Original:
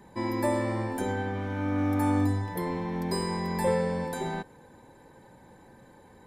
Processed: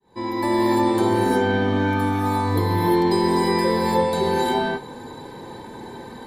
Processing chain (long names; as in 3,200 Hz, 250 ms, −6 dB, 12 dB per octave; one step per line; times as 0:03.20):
fade in at the beginning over 0.52 s
notch filter 600 Hz, Q 12
downward compressor 3 to 1, threshold −35 dBFS, peak gain reduction 10.5 dB
graphic EQ with 15 bands 400 Hz +9 dB, 1,000 Hz +5 dB, 4,000 Hz +11 dB
reverb whose tail is shaped and stops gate 380 ms rising, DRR −5.5 dB
level +6 dB